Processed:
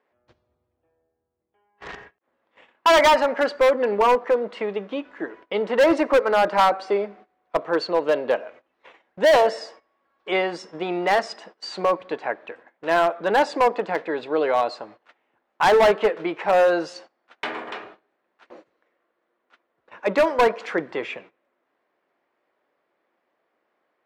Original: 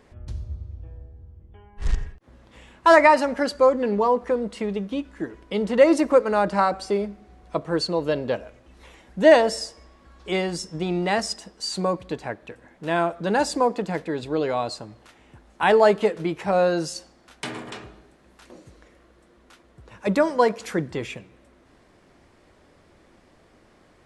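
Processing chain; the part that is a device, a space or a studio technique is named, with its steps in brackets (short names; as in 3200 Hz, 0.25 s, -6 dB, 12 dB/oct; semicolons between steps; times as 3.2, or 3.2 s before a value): walkie-talkie (BPF 480–2500 Hz; hard clip -19 dBFS, distortion -7 dB; gate -51 dBFS, range -19 dB); gain +6.5 dB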